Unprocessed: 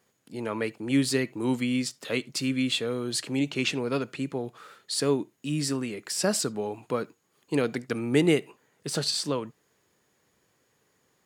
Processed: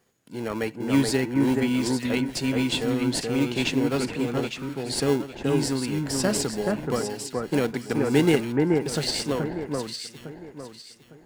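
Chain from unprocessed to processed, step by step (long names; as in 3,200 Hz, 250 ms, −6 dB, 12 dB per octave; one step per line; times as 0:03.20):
in parallel at −8 dB: decimation without filtering 36×
on the sum: delay that swaps between a low-pass and a high-pass 428 ms, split 1,900 Hz, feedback 55%, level −2 dB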